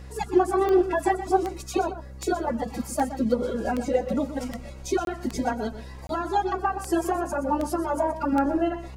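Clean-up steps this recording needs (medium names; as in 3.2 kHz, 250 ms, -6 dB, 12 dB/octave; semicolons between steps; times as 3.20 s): de-click; de-hum 65.2 Hz, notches 7; interpolate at 5.05/6.07 s, 22 ms; inverse comb 123 ms -12 dB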